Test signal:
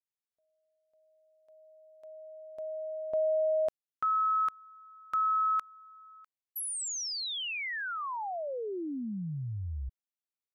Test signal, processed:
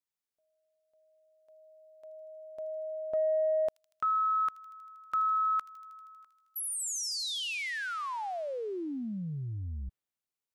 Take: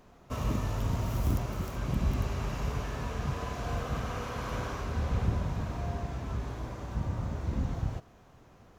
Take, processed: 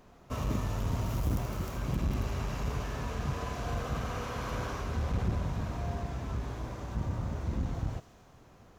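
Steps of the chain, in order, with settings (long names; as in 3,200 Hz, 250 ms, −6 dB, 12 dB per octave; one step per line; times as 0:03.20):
delay with a high-pass on its return 79 ms, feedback 80%, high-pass 4,000 Hz, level −10 dB
saturating transformer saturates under 150 Hz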